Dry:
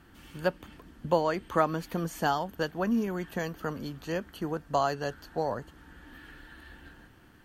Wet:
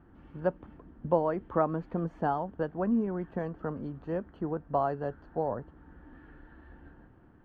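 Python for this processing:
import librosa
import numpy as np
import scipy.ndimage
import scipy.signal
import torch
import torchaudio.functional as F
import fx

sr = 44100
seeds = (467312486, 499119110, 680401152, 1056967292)

y = scipy.signal.sosfilt(scipy.signal.butter(2, 1000.0, 'lowpass', fs=sr, output='sos'), x)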